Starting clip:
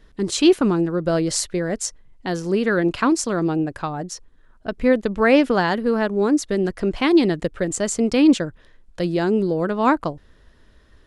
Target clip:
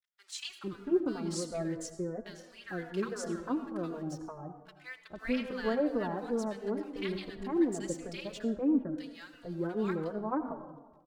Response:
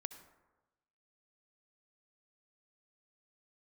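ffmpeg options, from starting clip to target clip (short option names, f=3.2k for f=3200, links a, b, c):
-filter_complex "[0:a]highshelf=f=8k:g=-5.5,aeval=exprs='sgn(val(0))*max(abs(val(0))-0.00562,0)':c=same,acrossover=split=1300[a][b];[a]adelay=450[c];[c][b]amix=inputs=2:normalize=0[d];[1:a]atrim=start_sample=2205,asetrate=36603,aresample=44100[e];[d][e]afir=irnorm=-1:irlink=0,asplit=2[f][g];[g]adelay=3.4,afreqshift=-2.9[h];[f][h]amix=inputs=2:normalize=1,volume=-9dB"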